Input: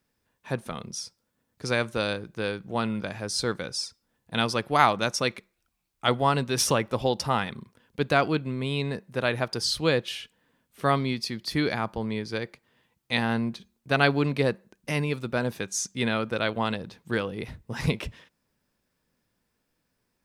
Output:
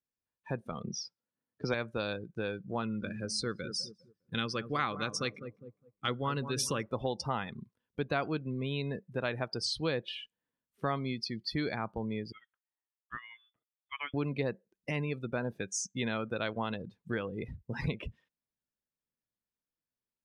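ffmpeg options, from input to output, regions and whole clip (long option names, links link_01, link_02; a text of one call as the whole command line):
ffmpeg -i in.wav -filter_complex "[0:a]asettb=1/sr,asplit=3[link_01][link_02][link_03];[link_01]atrim=end=0.844[link_04];[link_02]atrim=start=0.84:end=1.74,asetpts=PTS-STARTPTS,afade=type=in:duration=0.004:curve=qsin,afade=type=out:start_time=0.896:duration=0.004:curve=qsin,highpass=120,lowpass=4100,acontrast=46,asoftclip=type=hard:threshold=-12dB[link_05];[link_03]atrim=start=1.736[link_06];[link_04][link_05]acrossfade=duration=0.004:curve1=hsin:curve2=qsin[link_07];[link_07][link_06]acrossfade=duration=0.004:curve1=qsin:curve2=hsin,asettb=1/sr,asplit=3[link_08][link_09][link_10];[link_08]atrim=end=2.824[link_11];[link_09]atrim=start=2.82:end=6.83,asetpts=PTS-STARTPTS,afade=type=in:duration=0.004:curve=qsin,afade=type=out:start_time=4.006:duration=0.004:curve=qsin,equalizer=frequency=680:width=4.6:gain=-13,bandreject=frequency=900:width=5.8,asplit=2[link_12][link_13];[link_13]adelay=203,lowpass=frequency=1200:poles=1,volume=-11dB,asplit=2[link_14][link_15];[link_15]adelay=203,lowpass=frequency=1200:poles=1,volume=0.5,asplit=2[link_16][link_17];[link_17]adelay=203,lowpass=frequency=1200:poles=1,volume=0.5,asplit=2[link_18][link_19];[link_19]adelay=203,lowpass=frequency=1200:poles=1,volume=0.5,asplit=2[link_20][link_21];[link_21]adelay=203,lowpass=frequency=1200:poles=1,volume=0.5[link_22];[link_12][link_14][link_16][link_18][link_20][link_22]amix=inputs=6:normalize=0,atrim=end_sample=176841[link_23];[link_10]atrim=start=6.826[link_24];[link_11][link_23]acrossfade=duration=0.004:curve1=hsin:curve2=qsin[link_25];[link_25][link_24]acrossfade=duration=0.004:curve1=qsin:curve2=hsin,asettb=1/sr,asplit=3[link_26][link_27][link_28];[link_26]atrim=end=12.324[link_29];[link_27]atrim=start=12.32:end=14.14,asetpts=PTS-STARTPTS,afade=type=in:duration=0.004:curve=qsin,afade=type=out:start_time=1.816:duration=0.004:curve=qsin,aderivative,lowpass=frequency=3100:width_type=q:width=0.5098,lowpass=frequency=3100:width_type=q:width=0.6013,lowpass=frequency=3100:width_type=q:width=0.9,lowpass=frequency=3100:width_type=q:width=2.563,afreqshift=-3700[link_30];[link_28]atrim=start=14.136[link_31];[link_29][link_30]acrossfade=duration=0.004:curve1=hsin:curve2=qsin[link_32];[link_32][link_31]acrossfade=duration=0.004:curve1=qsin:curve2=hsin,afftdn=noise_reduction=23:noise_floor=-36,acompressor=threshold=-36dB:ratio=2" out.wav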